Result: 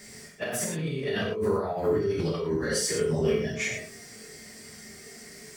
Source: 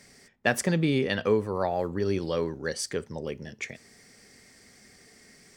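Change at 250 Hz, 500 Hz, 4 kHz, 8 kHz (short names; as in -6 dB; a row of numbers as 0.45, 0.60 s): -1.5, +1.5, +1.5, +5.0 dB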